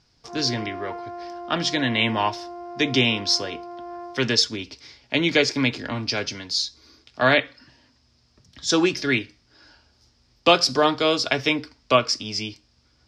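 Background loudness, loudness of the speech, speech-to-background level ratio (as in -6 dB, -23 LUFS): -37.0 LUFS, -22.0 LUFS, 15.0 dB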